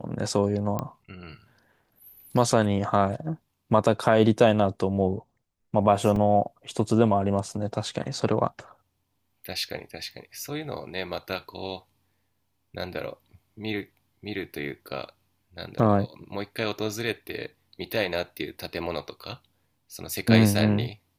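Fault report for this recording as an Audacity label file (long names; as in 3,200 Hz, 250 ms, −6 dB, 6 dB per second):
0.790000	0.790000	click −15 dBFS
6.160000	6.160000	drop-out 2.2 ms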